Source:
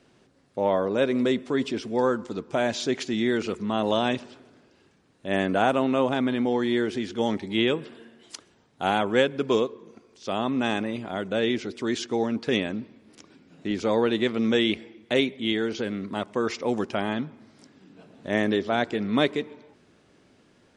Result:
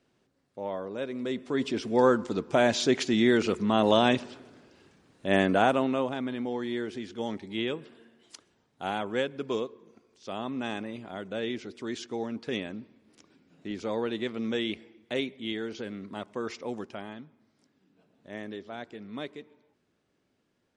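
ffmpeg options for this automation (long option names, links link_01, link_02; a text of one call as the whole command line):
ffmpeg -i in.wav -af "volume=2dB,afade=type=in:start_time=1.21:duration=0.87:silence=0.223872,afade=type=out:start_time=5.29:duration=0.84:silence=0.316228,afade=type=out:start_time=16.55:duration=0.64:silence=0.421697" out.wav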